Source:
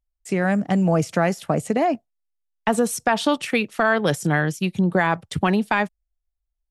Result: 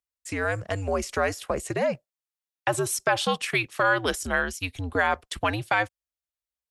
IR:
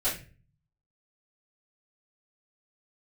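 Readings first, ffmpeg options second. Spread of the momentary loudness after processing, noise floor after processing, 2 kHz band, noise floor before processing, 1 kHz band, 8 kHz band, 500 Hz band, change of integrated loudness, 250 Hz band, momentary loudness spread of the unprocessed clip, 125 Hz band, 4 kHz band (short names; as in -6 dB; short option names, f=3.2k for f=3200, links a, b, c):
7 LU, under -85 dBFS, -1.5 dB, -79 dBFS, -4.0 dB, 0.0 dB, -4.5 dB, -4.5 dB, -13.0 dB, 4 LU, -9.0 dB, -0.5 dB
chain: -af "highpass=f=850:p=1,afreqshift=-95"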